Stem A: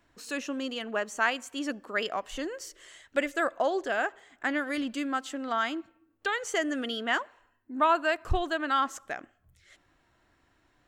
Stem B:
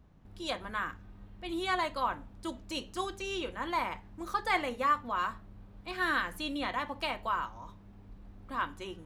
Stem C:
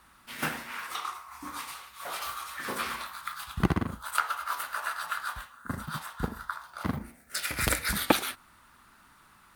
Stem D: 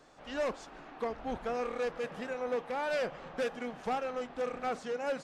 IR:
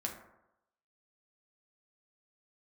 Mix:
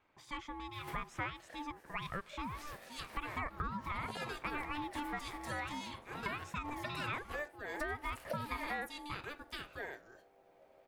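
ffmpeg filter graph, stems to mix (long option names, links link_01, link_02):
-filter_complex "[0:a]bass=frequency=250:gain=-7,treble=frequency=4000:gain=-13,tremolo=f=0.83:d=0.44,volume=-1.5dB,asplit=2[link_01][link_02];[1:a]highpass=41,highshelf=frequency=5400:gain=12,adelay=2500,volume=-9.5dB[link_03];[2:a]adelay=450,volume=-16dB[link_04];[3:a]adelay=2250,volume=-13dB[link_05];[link_02]apad=whole_len=441391[link_06];[link_04][link_06]sidechaincompress=threshold=-33dB:ratio=8:attack=11:release=287[link_07];[link_01][link_03][link_07][link_05]amix=inputs=4:normalize=0,aeval=exprs='val(0)*sin(2*PI*590*n/s)':channel_layout=same,acompressor=threshold=-35dB:ratio=6"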